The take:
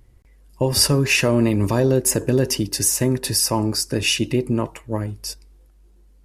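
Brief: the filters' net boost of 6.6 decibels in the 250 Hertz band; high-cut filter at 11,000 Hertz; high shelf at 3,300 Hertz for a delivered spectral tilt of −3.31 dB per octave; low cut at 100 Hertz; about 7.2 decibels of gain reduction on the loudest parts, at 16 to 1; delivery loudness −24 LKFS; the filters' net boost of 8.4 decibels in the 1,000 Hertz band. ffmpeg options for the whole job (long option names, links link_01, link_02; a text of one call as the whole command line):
ffmpeg -i in.wav -af "highpass=100,lowpass=11000,equalizer=frequency=250:width_type=o:gain=7.5,equalizer=frequency=1000:width_type=o:gain=8.5,highshelf=frequency=3300:gain=8,acompressor=threshold=-14dB:ratio=16,volume=-5dB" out.wav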